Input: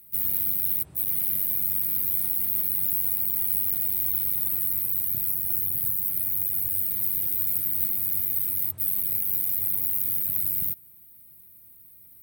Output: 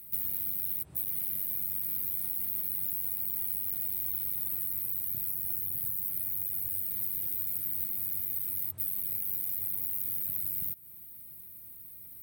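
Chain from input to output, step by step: compressor 4:1, threshold -34 dBFS, peak gain reduction 12 dB; gain +3 dB

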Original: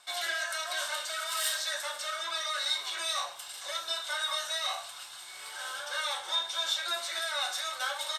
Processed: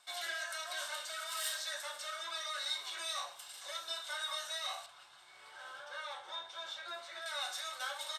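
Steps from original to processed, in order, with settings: 4.86–7.26 LPF 1700 Hz 6 dB/oct; gain -7 dB

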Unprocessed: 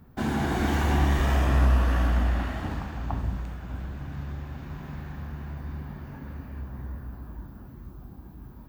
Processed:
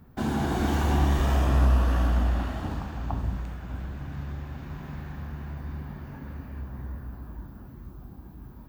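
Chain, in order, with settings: dynamic EQ 2000 Hz, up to -6 dB, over -50 dBFS, Q 2

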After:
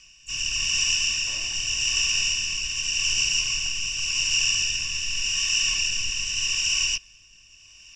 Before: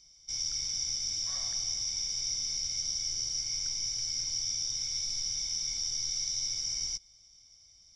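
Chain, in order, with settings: rotary speaker horn 0.85 Hz; harmoniser -12 st 0 dB, +4 st -12 dB, +5 st -15 dB; gain +8 dB

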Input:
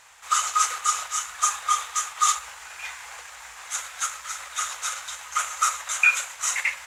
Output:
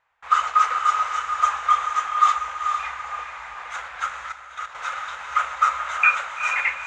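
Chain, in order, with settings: gate with hold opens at -40 dBFS; LPF 1900 Hz 12 dB/oct; diffused feedback echo 0.453 s, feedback 41%, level -6 dB; 4.29–4.75 level quantiser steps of 12 dB; gain +6 dB

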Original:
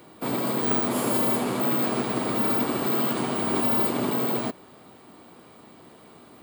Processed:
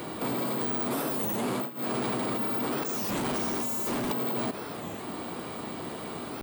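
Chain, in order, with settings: 2.86–4.12 sample leveller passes 5; negative-ratio compressor -29 dBFS, ratio -1; 1.47–1.99 dip -21 dB, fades 0.24 s; limiter -27 dBFS, peak gain reduction 15.5 dB; record warp 33 1/3 rpm, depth 250 cents; gain +5.5 dB

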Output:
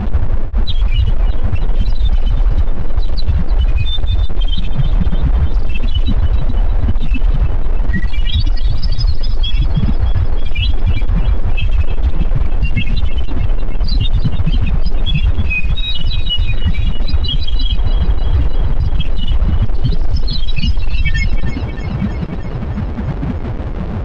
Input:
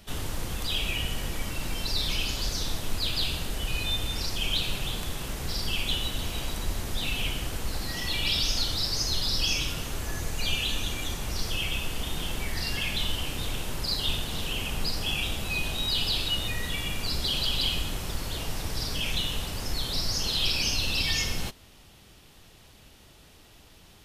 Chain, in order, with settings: spectral contrast raised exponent 3.3; bell 230 Hz +13.5 dB 2.1 oct; in parallel at -0.5 dB: negative-ratio compressor -40 dBFS, ratio -1; on the sum: bit-crush 7-bit; tape spacing loss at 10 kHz 35 dB; on a send: thinning echo 0.312 s, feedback 68%, level -14 dB; on the sum: maximiser +24 dB; gain -4.5 dB

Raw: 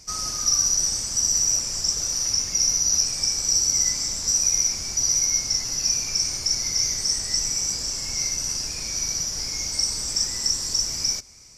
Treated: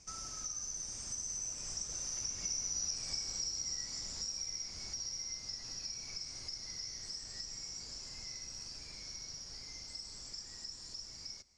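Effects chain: Doppler pass-by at 2.82, 14 m/s, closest 7.7 m; Bessel low-pass 6800 Hz, order 8; compressor 3:1, threshold -47 dBFS, peak gain reduction 20.5 dB; gain +4.5 dB

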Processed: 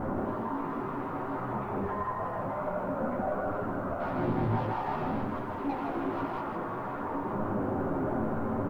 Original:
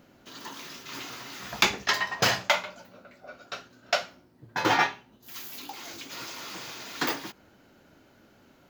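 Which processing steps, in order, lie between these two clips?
delta modulation 64 kbps, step -17 dBFS; Chebyshev low-pass 1100 Hz, order 3; limiter -23.5 dBFS, peak gain reduction 9.5 dB; 4–6.4 sample leveller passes 1; chorus voices 2, 0.56 Hz, delay 14 ms, depth 4.5 ms; requantised 12-bit, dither triangular; echo 0.16 s -5.5 dB; reverb, pre-delay 5 ms, DRR 8.5 dB; gain -2.5 dB

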